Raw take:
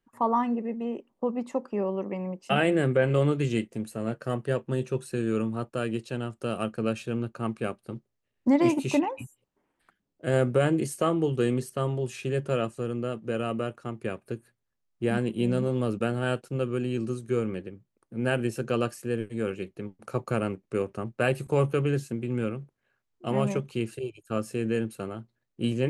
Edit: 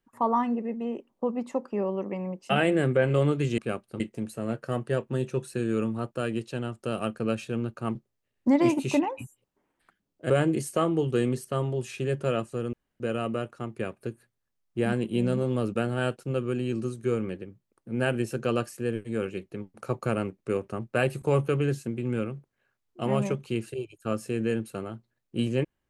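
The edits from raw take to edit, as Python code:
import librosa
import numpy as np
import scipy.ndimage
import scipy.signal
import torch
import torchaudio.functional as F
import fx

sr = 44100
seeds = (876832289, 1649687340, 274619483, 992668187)

y = fx.edit(x, sr, fx.move(start_s=7.53, length_s=0.42, to_s=3.58),
    fx.cut(start_s=10.3, length_s=0.25),
    fx.room_tone_fill(start_s=12.98, length_s=0.27), tone=tone)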